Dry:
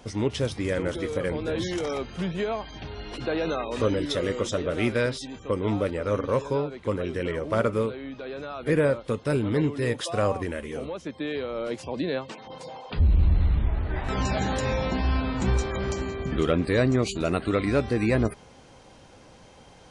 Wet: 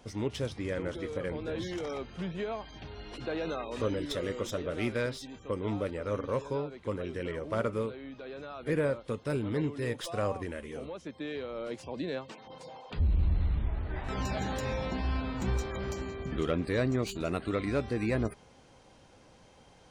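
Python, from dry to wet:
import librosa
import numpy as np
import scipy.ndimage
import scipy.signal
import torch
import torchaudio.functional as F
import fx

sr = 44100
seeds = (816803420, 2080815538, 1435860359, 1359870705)

y = fx.tracing_dist(x, sr, depth_ms=0.028)
y = fx.high_shelf(y, sr, hz=8900.0, db=-10.0, at=(0.48, 2.52))
y = y * librosa.db_to_amplitude(-7.0)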